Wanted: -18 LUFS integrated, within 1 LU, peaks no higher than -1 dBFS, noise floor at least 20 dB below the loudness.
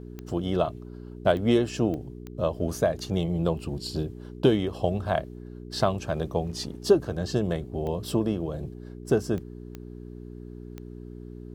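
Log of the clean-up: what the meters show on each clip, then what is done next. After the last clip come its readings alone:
clicks 8; hum 60 Hz; harmonics up to 420 Hz; hum level -38 dBFS; loudness -27.5 LUFS; peak -7.0 dBFS; loudness target -18.0 LUFS
-> de-click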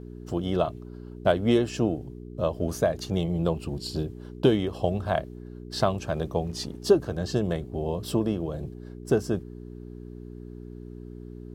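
clicks 0; hum 60 Hz; harmonics up to 420 Hz; hum level -38 dBFS
-> de-hum 60 Hz, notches 7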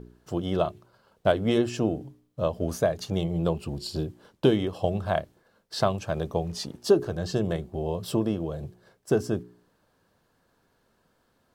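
hum none; loudness -28.0 LUFS; peak -7.5 dBFS; loudness target -18.0 LUFS
-> gain +10 dB; limiter -1 dBFS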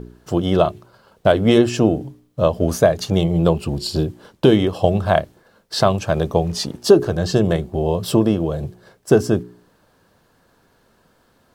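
loudness -18.5 LUFS; peak -1.0 dBFS; noise floor -59 dBFS

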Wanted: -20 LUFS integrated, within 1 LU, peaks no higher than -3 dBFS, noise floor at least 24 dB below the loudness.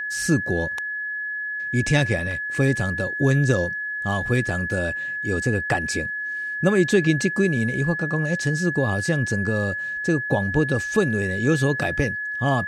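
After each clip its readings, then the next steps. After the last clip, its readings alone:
steady tone 1700 Hz; tone level -26 dBFS; loudness -22.5 LUFS; peak -5.5 dBFS; loudness target -20.0 LUFS
-> notch 1700 Hz, Q 30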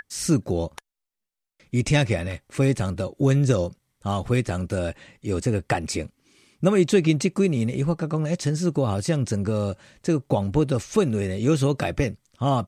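steady tone none; loudness -24.0 LUFS; peak -6.0 dBFS; loudness target -20.0 LUFS
-> gain +4 dB; limiter -3 dBFS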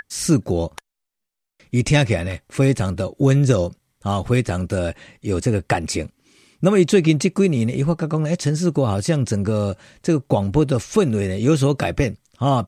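loudness -20.0 LUFS; peak -3.0 dBFS; noise floor -79 dBFS

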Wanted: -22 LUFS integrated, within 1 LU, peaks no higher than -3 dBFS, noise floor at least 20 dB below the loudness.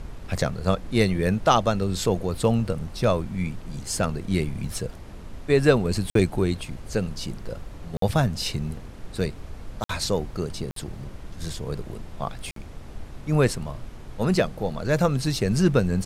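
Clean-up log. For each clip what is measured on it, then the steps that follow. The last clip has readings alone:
dropouts 5; longest dropout 53 ms; noise floor -40 dBFS; noise floor target -46 dBFS; loudness -25.5 LUFS; peak -5.0 dBFS; loudness target -22.0 LUFS
-> interpolate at 6.1/7.97/9.84/10.71/12.51, 53 ms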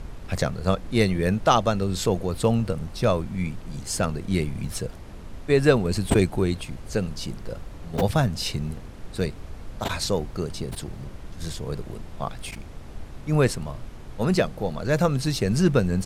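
dropouts 0; noise floor -40 dBFS; noise floor target -46 dBFS
-> noise print and reduce 6 dB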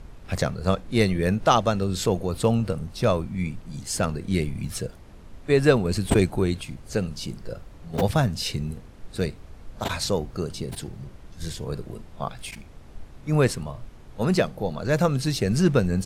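noise floor -46 dBFS; loudness -25.0 LUFS; peak -5.0 dBFS; loudness target -22.0 LUFS
-> gain +3 dB; limiter -3 dBFS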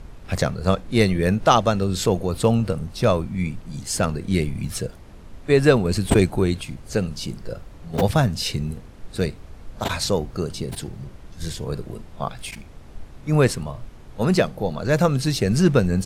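loudness -22.0 LUFS; peak -3.0 dBFS; noise floor -43 dBFS

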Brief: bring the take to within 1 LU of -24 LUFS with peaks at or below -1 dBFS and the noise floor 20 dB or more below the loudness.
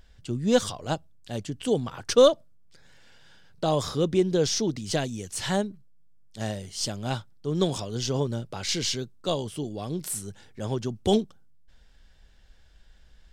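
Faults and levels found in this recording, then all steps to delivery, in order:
loudness -27.5 LUFS; peak -6.0 dBFS; loudness target -24.0 LUFS
-> gain +3.5 dB

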